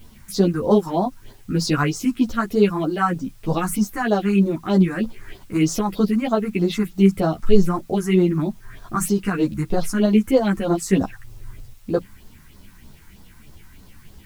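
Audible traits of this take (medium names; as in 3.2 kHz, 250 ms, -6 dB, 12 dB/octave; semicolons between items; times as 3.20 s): phasing stages 4, 3.2 Hz, lowest notch 510–2500 Hz; a quantiser's noise floor 10-bit, dither triangular; a shimmering, thickened sound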